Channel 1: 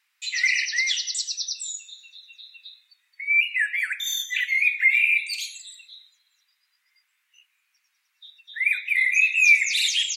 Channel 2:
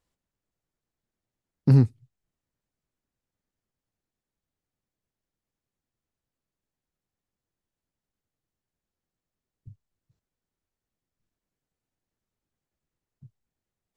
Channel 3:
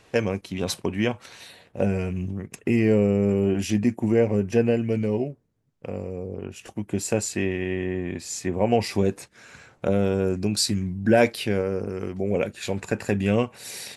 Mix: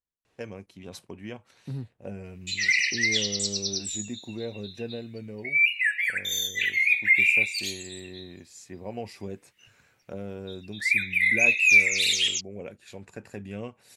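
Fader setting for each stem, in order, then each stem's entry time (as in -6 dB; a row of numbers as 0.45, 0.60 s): -1.0, -18.0, -15.0 dB; 2.25, 0.00, 0.25 s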